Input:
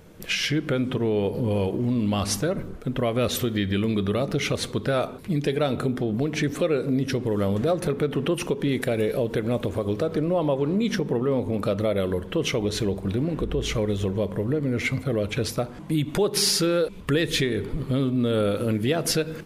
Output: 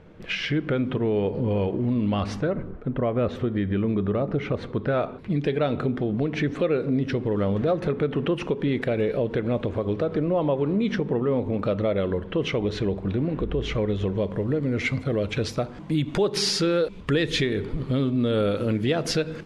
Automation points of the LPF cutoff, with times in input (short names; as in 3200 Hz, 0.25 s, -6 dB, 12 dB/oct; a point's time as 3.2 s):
2.15 s 2800 Hz
2.96 s 1500 Hz
4.55 s 1500 Hz
5.31 s 3100 Hz
13.88 s 3100 Hz
14.51 s 5600 Hz